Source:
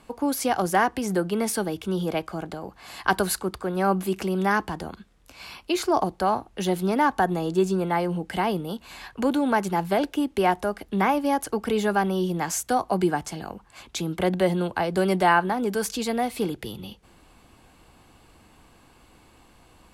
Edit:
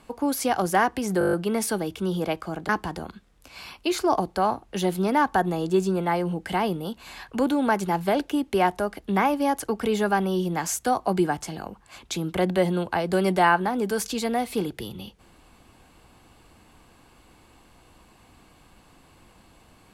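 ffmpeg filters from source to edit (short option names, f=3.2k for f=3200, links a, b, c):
-filter_complex "[0:a]asplit=9[a][b][c][d][e][f][g][h][i];[a]atrim=end=1.212[j];[b]atrim=start=1.188:end=1.212[k];[c]atrim=start=1.188:end=1.212[l];[d]atrim=start=1.188:end=1.212[m];[e]atrim=start=1.188:end=1.212[n];[f]atrim=start=1.188:end=1.212[o];[g]atrim=start=1.188:end=1.212[p];[h]atrim=start=1.188:end=2.552[q];[i]atrim=start=4.528[r];[j][k]acrossfade=d=0.004:c1=hsin:c2=hsin[s];[s][l]acrossfade=d=0.004:c1=hsin:c2=hsin[t];[t][m]acrossfade=d=0.004:c1=hsin:c2=hsin[u];[u][n]acrossfade=d=0.004:c1=hsin:c2=hsin[v];[v][o]acrossfade=d=0.004:c1=hsin:c2=hsin[w];[w][p]acrossfade=d=0.004:c1=hsin:c2=hsin[x];[x][q]acrossfade=d=0.004:c1=hsin:c2=hsin[y];[y][r]acrossfade=d=0.004:c1=hsin:c2=hsin"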